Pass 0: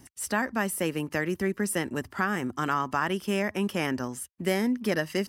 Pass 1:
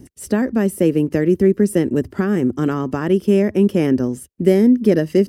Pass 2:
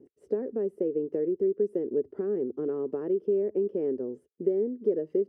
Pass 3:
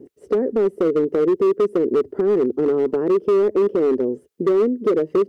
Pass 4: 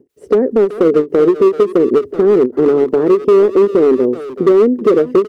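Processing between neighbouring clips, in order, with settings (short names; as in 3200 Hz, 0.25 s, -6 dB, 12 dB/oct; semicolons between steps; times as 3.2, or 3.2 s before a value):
resonant low shelf 630 Hz +12.5 dB, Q 1.5
compressor 4:1, threshold -17 dBFS, peak gain reduction 8 dB; band-pass 430 Hz, Q 5.3
in parallel at -2 dB: limiter -23.5 dBFS, peak gain reduction 8.5 dB; on the sum: hard clip -20.5 dBFS, distortion -15 dB; gain +7.5 dB
speakerphone echo 0.38 s, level -9 dB; ending taper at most 290 dB/s; gain +7.5 dB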